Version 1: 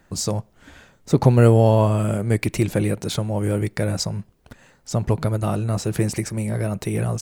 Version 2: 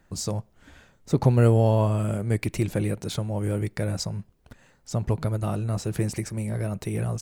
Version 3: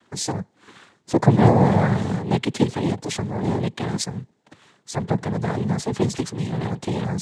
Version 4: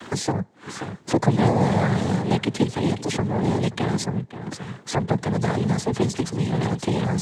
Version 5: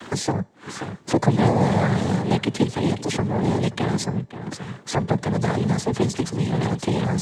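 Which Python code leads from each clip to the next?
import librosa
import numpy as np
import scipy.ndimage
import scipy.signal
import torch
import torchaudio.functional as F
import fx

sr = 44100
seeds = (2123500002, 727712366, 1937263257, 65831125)

y1 = fx.low_shelf(x, sr, hz=97.0, db=5.0)
y1 = F.gain(torch.from_numpy(y1), -6.0).numpy()
y2 = y1 + 0.77 * np.pad(y1, (int(2.7 * sr / 1000.0), 0))[:len(y1)]
y2 = fx.noise_vocoder(y2, sr, seeds[0], bands=6)
y2 = F.gain(torch.from_numpy(y2), 3.5).numpy()
y3 = y2 + 10.0 ** (-17.5 / 20.0) * np.pad(y2, (int(529 * sr / 1000.0), 0))[:len(y2)]
y3 = fx.band_squash(y3, sr, depth_pct=70)
y4 = fx.comb_fb(y3, sr, f0_hz=580.0, decay_s=0.46, harmonics='all', damping=0.0, mix_pct=40)
y4 = F.gain(torch.from_numpy(y4), 5.0).numpy()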